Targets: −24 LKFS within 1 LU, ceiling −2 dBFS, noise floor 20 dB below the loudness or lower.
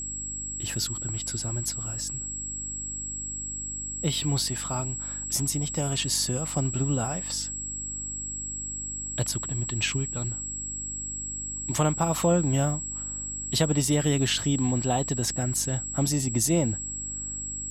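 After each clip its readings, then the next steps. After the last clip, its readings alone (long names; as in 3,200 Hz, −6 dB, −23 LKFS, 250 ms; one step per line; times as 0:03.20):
mains hum 50 Hz; hum harmonics up to 300 Hz; level of the hum −41 dBFS; interfering tone 7,700 Hz; level of the tone −32 dBFS; integrated loudness −27.5 LKFS; sample peak −11.0 dBFS; target loudness −24.0 LKFS
→ hum removal 50 Hz, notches 6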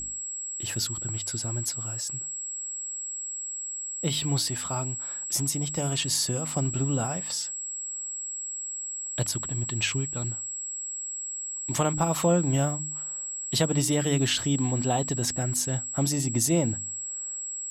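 mains hum none found; interfering tone 7,700 Hz; level of the tone −32 dBFS
→ notch filter 7,700 Hz, Q 30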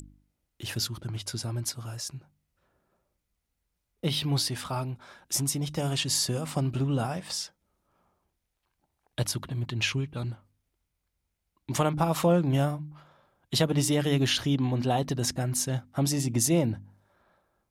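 interfering tone none found; integrated loudness −28.5 LKFS; sample peak −11.5 dBFS; target loudness −24.0 LKFS
→ level +4.5 dB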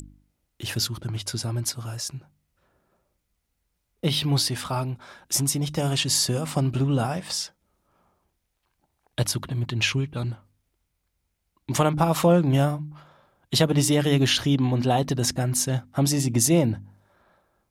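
integrated loudness −24.0 LKFS; sample peak −7.0 dBFS; background noise floor −77 dBFS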